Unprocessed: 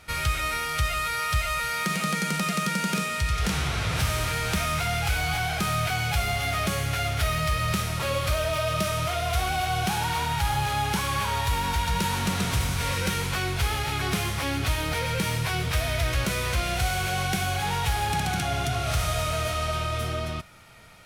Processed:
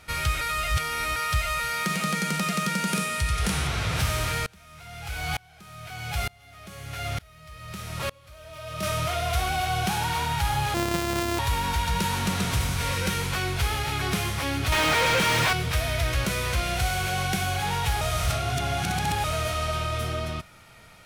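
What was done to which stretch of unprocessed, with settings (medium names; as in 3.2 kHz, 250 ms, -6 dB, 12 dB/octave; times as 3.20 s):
0.41–1.16 s: reverse
2.87–3.67 s: peaking EQ 9.7 kHz +7 dB 0.35 oct
4.46–8.83 s: sawtooth tremolo in dB swelling 1.1 Hz, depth 30 dB
10.74–11.39 s: sorted samples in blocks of 128 samples
14.72–15.53 s: overdrive pedal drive 36 dB, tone 3 kHz, clips at -14.5 dBFS
18.01–19.24 s: reverse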